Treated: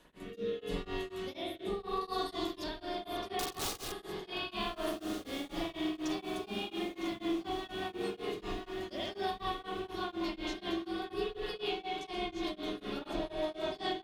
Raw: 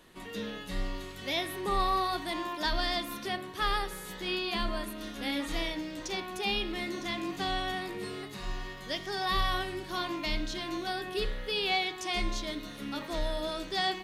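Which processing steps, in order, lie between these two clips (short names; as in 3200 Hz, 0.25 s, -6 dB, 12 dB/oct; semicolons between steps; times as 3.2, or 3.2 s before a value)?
2.01–2.64 resonant high shelf 3400 Hz +9 dB, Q 1.5; 6.5–7.12 Chebyshev high-pass 170 Hz; spring tank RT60 1.1 s, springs 45 ms, chirp 75 ms, DRR -9.5 dB; compressor 5:1, threshold -27 dBFS, peak gain reduction 12 dB; 3.39–3.92 wrapped overs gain 25.5 dB; dynamic EQ 1900 Hz, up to -8 dB, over -48 dBFS, Q 1.5; rotary speaker horn 0.8 Hz, later 5 Hz, at 6.31; diffused feedback echo 1.525 s, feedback 56%, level -10 dB; beating tremolo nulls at 4.1 Hz; gain -1.5 dB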